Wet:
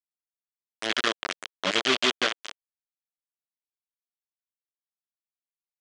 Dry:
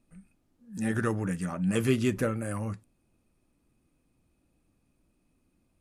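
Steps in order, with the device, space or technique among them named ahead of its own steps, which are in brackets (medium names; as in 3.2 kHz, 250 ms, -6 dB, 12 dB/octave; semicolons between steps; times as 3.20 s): hand-held game console (bit crusher 4-bit; cabinet simulation 460–5900 Hz, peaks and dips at 500 Hz -6 dB, 850 Hz -8 dB, 3.2 kHz +8 dB); trim +5 dB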